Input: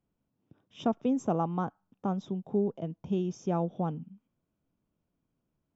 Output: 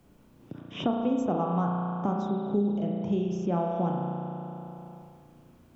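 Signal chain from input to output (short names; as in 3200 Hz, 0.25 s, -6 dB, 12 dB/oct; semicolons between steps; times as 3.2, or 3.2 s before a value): spring tank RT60 1.7 s, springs 34 ms, chirp 20 ms, DRR -0.5 dB; three-band squash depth 70%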